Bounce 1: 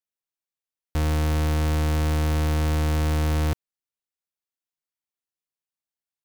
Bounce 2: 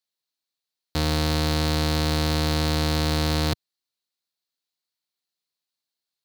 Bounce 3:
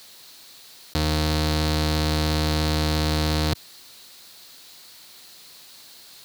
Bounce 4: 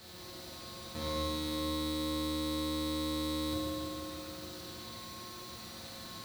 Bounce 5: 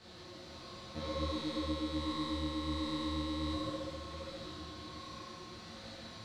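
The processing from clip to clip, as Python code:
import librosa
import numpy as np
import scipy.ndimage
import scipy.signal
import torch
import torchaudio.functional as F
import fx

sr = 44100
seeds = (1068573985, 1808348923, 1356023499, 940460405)

y1 = scipy.signal.sosfilt(scipy.signal.butter(2, 100.0, 'highpass', fs=sr, output='sos'), x)
y1 = fx.peak_eq(y1, sr, hz=4200.0, db=13.5, octaves=0.52)
y1 = y1 * librosa.db_to_amplitude(2.5)
y2 = fx.env_flatten(y1, sr, amount_pct=100)
y3 = fx.bin_compress(y2, sr, power=0.4)
y3 = fx.comb_fb(y3, sr, f0_hz=180.0, decay_s=1.0, harmonics='all', damping=0.0, mix_pct=80)
y3 = fx.rev_fdn(y3, sr, rt60_s=3.5, lf_ratio=1.0, hf_ratio=0.8, size_ms=27.0, drr_db=-8.5)
y3 = y3 * librosa.db_to_amplitude(-8.5)
y4 = fx.air_absorb(y3, sr, metres=100.0)
y4 = y4 + 10.0 ** (-9.5 / 20.0) * np.pad(y4, (int(986 * sr / 1000.0), 0))[:len(y4)]
y4 = fx.detune_double(y4, sr, cents=47)
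y4 = y4 * librosa.db_to_amplitude(2.5)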